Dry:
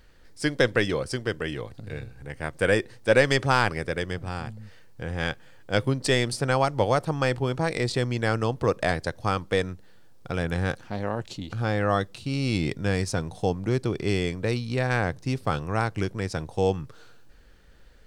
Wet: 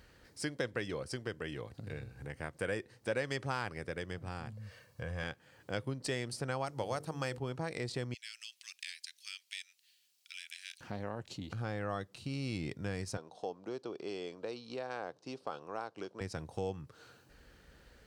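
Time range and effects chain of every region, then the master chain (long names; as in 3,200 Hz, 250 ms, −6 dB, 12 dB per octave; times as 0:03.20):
0:04.52–0:05.23: parametric band 400 Hz −8.5 dB 0.25 octaves + comb filter 1.8 ms, depth 52%
0:06.66–0:07.38: high-shelf EQ 4,900 Hz +9.5 dB + mains-hum notches 50/100/150/200/250/300/350/400/450/500 Hz
0:08.14–0:10.81: Butterworth high-pass 2,400 Hz + log-companded quantiser 8 bits
0:13.17–0:16.21: band-pass filter 430–4,600 Hz + parametric band 2,000 Hz −12.5 dB 0.85 octaves
whole clip: high-pass filter 57 Hz; notch filter 3,500 Hz, Q 23; downward compressor 2 to 1, threshold −43 dBFS; level −1 dB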